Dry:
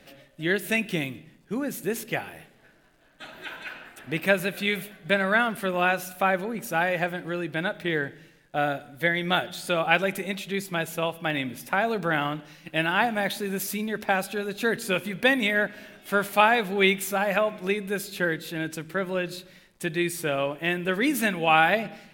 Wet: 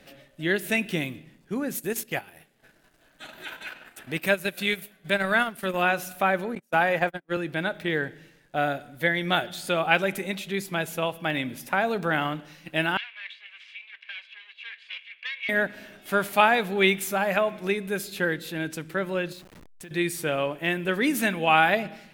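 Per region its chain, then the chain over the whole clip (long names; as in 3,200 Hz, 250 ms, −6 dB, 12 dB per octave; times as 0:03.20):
0:01.75–0:05.83: high-shelf EQ 4,300 Hz +7 dB + transient designer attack −3 dB, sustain −11 dB
0:06.55–0:07.37: noise gate −31 dBFS, range −42 dB + dynamic equaliser 920 Hz, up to +4 dB, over −37 dBFS, Q 0.89 + multiband upward and downward compressor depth 40%
0:12.97–0:15.49: lower of the sound and its delayed copy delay 1.8 ms + flat-topped band-pass 2,600 Hz, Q 2 + high-frequency loss of the air 54 metres
0:19.32–0:19.91: hold until the input has moved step −42 dBFS + downward compressor 12 to 1, threshold −39 dBFS
whole clip: no processing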